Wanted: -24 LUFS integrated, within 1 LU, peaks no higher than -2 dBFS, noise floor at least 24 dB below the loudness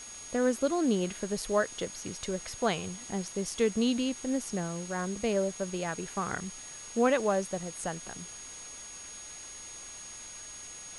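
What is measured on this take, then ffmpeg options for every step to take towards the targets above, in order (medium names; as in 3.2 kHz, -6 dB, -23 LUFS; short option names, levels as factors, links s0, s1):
steady tone 6.6 kHz; tone level -44 dBFS; noise floor -45 dBFS; noise floor target -57 dBFS; loudness -32.5 LUFS; peak level -13.0 dBFS; loudness target -24.0 LUFS
-> -af "bandreject=f=6600:w=30"
-af "afftdn=nr=12:nf=-45"
-af "volume=2.66"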